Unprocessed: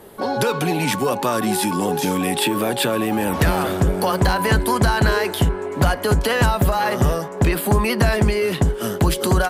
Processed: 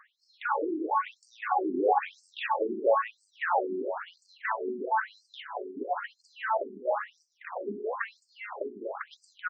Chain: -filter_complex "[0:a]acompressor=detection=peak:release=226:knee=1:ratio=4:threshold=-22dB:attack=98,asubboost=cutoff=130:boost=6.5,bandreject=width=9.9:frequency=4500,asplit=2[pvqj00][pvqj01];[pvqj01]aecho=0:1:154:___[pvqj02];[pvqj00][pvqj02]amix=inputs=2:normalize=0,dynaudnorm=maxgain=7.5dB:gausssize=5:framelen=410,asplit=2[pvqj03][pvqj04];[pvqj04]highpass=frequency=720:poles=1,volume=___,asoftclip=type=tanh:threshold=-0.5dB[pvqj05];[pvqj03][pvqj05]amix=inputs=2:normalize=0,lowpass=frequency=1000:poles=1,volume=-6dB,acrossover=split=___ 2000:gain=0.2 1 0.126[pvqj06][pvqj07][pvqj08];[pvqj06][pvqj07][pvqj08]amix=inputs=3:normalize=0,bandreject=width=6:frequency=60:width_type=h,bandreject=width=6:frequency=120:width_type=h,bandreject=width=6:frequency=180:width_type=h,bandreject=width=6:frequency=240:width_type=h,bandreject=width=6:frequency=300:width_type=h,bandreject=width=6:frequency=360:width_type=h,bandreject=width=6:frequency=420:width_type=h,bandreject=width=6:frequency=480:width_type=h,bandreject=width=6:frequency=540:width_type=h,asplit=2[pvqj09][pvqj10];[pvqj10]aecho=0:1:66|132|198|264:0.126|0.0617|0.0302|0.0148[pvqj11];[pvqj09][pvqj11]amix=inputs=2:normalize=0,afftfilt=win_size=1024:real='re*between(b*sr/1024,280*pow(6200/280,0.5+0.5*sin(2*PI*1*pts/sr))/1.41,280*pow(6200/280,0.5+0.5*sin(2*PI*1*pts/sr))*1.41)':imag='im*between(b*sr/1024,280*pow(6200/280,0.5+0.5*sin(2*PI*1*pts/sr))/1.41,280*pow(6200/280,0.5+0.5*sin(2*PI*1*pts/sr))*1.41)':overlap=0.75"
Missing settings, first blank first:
0.335, 13dB, 360